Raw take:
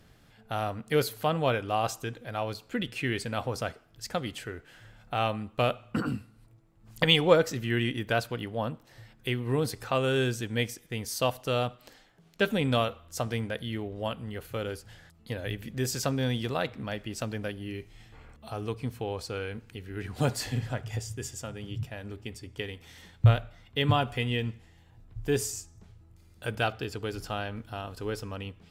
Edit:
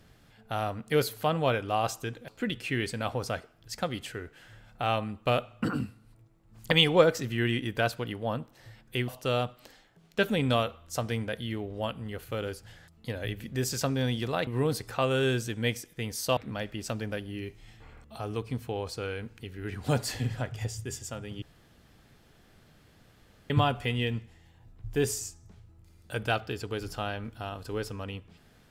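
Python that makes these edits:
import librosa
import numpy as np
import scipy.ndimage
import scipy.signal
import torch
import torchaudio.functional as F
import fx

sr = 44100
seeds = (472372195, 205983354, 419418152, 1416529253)

y = fx.edit(x, sr, fx.cut(start_s=2.28, length_s=0.32),
    fx.move(start_s=9.4, length_s=1.9, to_s=16.69),
    fx.room_tone_fill(start_s=21.74, length_s=2.08), tone=tone)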